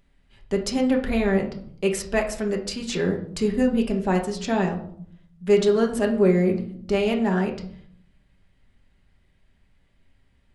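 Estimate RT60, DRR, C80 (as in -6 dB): 0.60 s, 1.5 dB, 13.5 dB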